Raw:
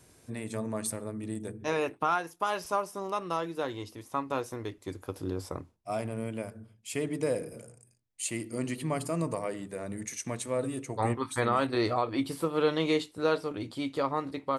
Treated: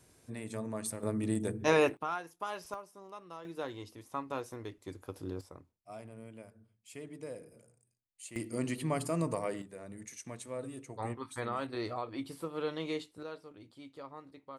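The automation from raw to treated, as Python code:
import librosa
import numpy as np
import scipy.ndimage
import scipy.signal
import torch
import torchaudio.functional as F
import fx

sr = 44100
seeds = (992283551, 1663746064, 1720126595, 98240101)

y = fx.gain(x, sr, db=fx.steps((0.0, -4.5), (1.03, 4.0), (1.97, -8.5), (2.74, -15.5), (3.45, -6.0), (5.41, -14.0), (8.36, -1.5), (9.62, -9.5), (13.23, -17.5)))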